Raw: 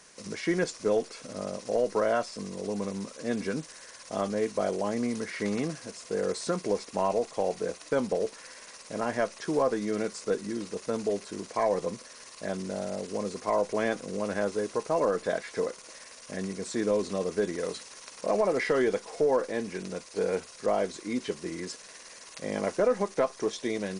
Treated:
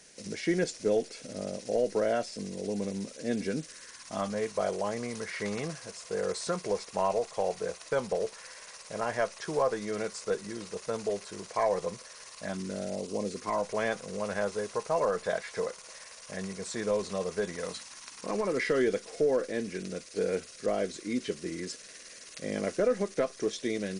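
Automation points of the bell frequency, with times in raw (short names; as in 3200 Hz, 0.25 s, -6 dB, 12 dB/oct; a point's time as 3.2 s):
bell -12.5 dB 0.65 oct
3.54 s 1100 Hz
4.49 s 270 Hz
12.31 s 270 Hz
13.1 s 1900 Hz
13.71 s 290 Hz
17.4 s 290 Hz
18.79 s 920 Hz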